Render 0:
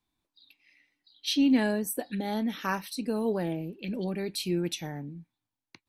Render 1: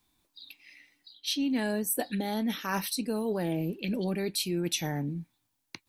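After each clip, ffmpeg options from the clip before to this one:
-af "highshelf=f=5100:g=7.5,areverse,acompressor=threshold=0.0178:ratio=6,areverse,volume=2.37"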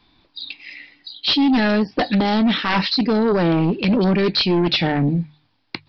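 -af "bandreject=f=50:t=h:w=6,bandreject=f=100:t=h:w=6,bandreject=f=150:t=h:w=6,aresample=11025,aeval=exprs='0.141*sin(PI/2*2.82*val(0)/0.141)':c=same,aresample=44100,volume=1.58"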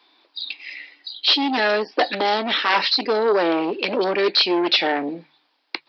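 -af "highpass=f=360:w=0.5412,highpass=f=360:w=1.3066,volume=1.26"

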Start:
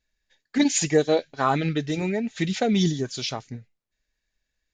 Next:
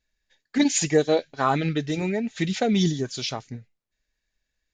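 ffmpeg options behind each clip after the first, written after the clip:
-af anull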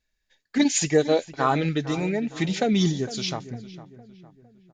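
-filter_complex "[0:a]asplit=2[s0][s1];[s1]adelay=457,lowpass=f=2100:p=1,volume=0.178,asplit=2[s2][s3];[s3]adelay=457,lowpass=f=2100:p=1,volume=0.46,asplit=2[s4][s5];[s5]adelay=457,lowpass=f=2100:p=1,volume=0.46,asplit=2[s6][s7];[s7]adelay=457,lowpass=f=2100:p=1,volume=0.46[s8];[s0][s2][s4][s6][s8]amix=inputs=5:normalize=0"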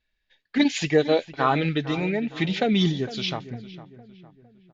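-af "lowpass=f=3300:t=q:w=1.6"

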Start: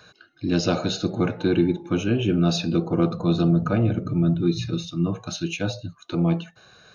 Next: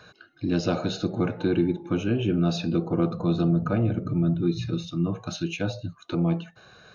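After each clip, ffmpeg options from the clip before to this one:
-filter_complex "[0:a]highshelf=f=3700:g=-7.5,asplit=2[s0][s1];[s1]acompressor=threshold=0.0316:ratio=6,volume=1.19[s2];[s0][s2]amix=inputs=2:normalize=0,volume=0.562"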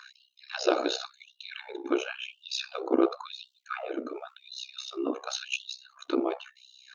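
-af "tremolo=f=64:d=0.919,afftfilt=real='re*gte(b*sr/1024,250*pow(2800/250,0.5+0.5*sin(2*PI*0.93*pts/sr)))':imag='im*gte(b*sr/1024,250*pow(2800/250,0.5+0.5*sin(2*PI*0.93*pts/sr)))':win_size=1024:overlap=0.75,volume=2.11"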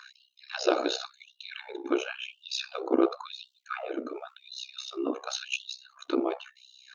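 -af anull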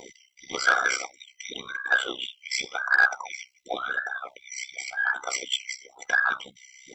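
-af "afftfilt=real='real(if(between(b,1,1012),(2*floor((b-1)/92)+1)*92-b,b),0)':imag='imag(if(between(b,1,1012),(2*floor((b-1)/92)+1)*92-b,b),0)*if(between(b,1,1012),-1,1)':win_size=2048:overlap=0.75,asoftclip=type=tanh:threshold=0.211,volume=1.78"

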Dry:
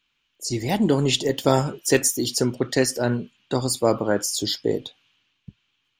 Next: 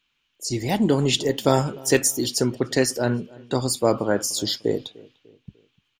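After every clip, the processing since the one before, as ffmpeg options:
-filter_complex "[0:a]asplit=2[s0][s1];[s1]adelay=298,lowpass=f=1500:p=1,volume=0.075,asplit=2[s2][s3];[s3]adelay=298,lowpass=f=1500:p=1,volume=0.46,asplit=2[s4][s5];[s5]adelay=298,lowpass=f=1500:p=1,volume=0.46[s6];[s0][s2][s4][s6]amix=inputs=4:normalize=0"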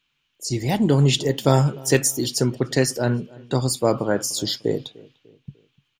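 -af "equalizer=f=140:w=4.1:g=8.5"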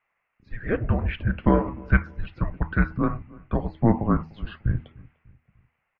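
-af "highpass=f=370:t=q:w=0.5412,highpass=f=370:t=q:w=1.307,lowpass=f=2300:t=q:w=0.5176,lowpass=f=2300:t=q:w=0.7071,lowpass=f=2300:t=q:w=1.932,afreqshift=-340,bandreject=f=79.55:t=h:w=4,bandreject=f=159.1:t=h:w=4,bandreject=f=238.65:t=h:w=4,bandreject=f=318.2:t=h:w=4,volume=1.33"

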